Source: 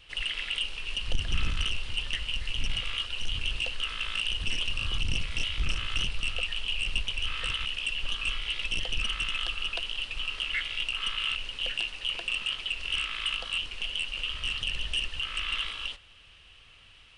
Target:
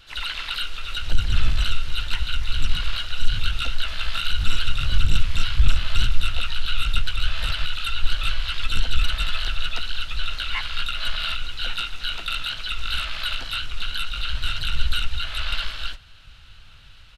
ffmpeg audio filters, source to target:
-filter_complex "[0:a]asplit=4[a][b][c][d];[b]asetrate=22050,aresample=44100,atempo=2,volume=-4dB[e];[c]asetrate=33038,aresample=44100,atempo=1.33484,volume=-17dB[f];[d]asetrate=58866,aresample=44100,atempo=0.749154,volume=-2dB[g];[a][e][f][g]amix=inputs=4:normalize=0,asubboost=boost=2.5:cutoff=210"

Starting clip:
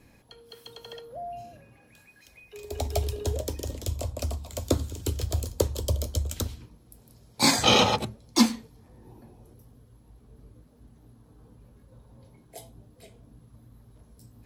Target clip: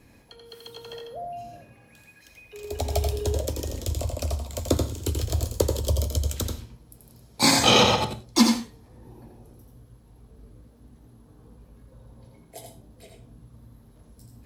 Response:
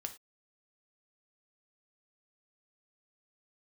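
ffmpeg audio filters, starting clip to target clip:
-filter_complex "[0:a]asplit=2[a][b];[1:a]atrim=start_sample=2205,adelay=84[c];[b][c]afir=irnorm=-1:irlink=0,volume=-2.5dB[d];[a][d]amix=inputs=2:normalize=0,volume=1.5dB"

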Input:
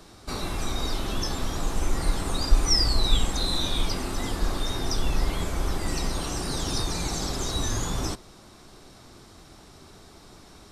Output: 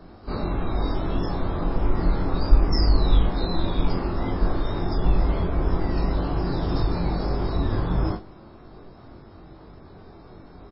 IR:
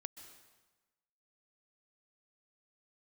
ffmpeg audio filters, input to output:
-filter_complex "[0:a]equalizer=f=3.7k:w=0.45:g=-14,aecho=1:1:22|40:0.708|0.447,asplit=2[a][b];[1:a]atrim=start_sample=2205,lowpass=2.6k,lowshelf=f=210:g=-10.5[c];[b][c]afir=irnorm=-1:irlink=0,volume=-7dB[d];[a][d]amix=inputs=2:normalize=0,volume=3dB" -ar 12000 -c:a libmp3lame -b:a 16k

